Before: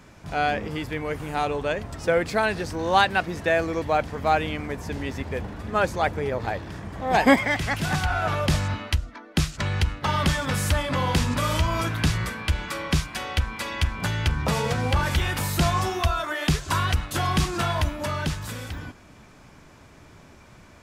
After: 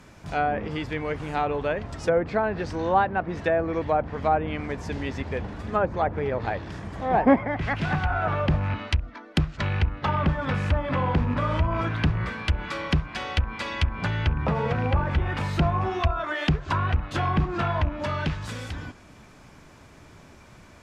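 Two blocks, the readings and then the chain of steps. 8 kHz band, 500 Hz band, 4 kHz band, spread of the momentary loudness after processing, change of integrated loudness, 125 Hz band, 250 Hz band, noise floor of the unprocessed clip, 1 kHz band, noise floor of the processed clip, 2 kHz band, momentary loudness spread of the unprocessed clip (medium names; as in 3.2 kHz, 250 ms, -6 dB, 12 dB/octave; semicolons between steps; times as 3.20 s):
under -10 dB, 0.0 dB, -6.5 dB, 7 LU, -1.0 dB, 0.0 dB, 0.0 dB, -50 dBFS, -1.0 dB, -50 dBFS, -4.0 dB, 8 LU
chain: rattle on loud lows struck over -23 dBFS, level -22 dBFS; low-pass that closes with the level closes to 1.1 kHz, closed at -18.5 dBFS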